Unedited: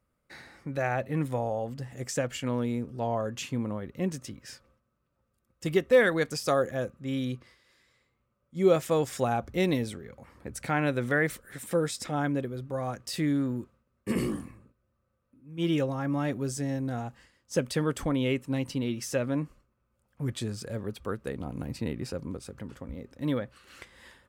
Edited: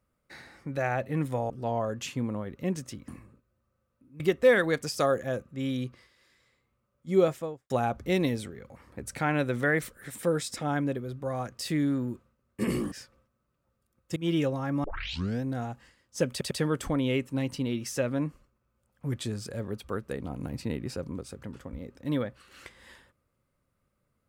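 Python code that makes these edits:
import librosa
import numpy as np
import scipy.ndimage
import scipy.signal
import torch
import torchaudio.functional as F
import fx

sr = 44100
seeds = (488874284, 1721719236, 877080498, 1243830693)

y = fx.studio_fade_out(x, sr, start_s=8.6, length_s=0.58)
y = fx.edit(y, sr, fx.cut(start_s=1.5, length_s=1.36),
    fx.swap(start_s=4.44, length_s=1.24, other_s=14.4, other_length_s=1.12),
    fx.tape_start(start_s=16.2, length_s=0.59),
    fx.stutter(start_s=17.67, slice_s=0.1, count=3), tone=tone)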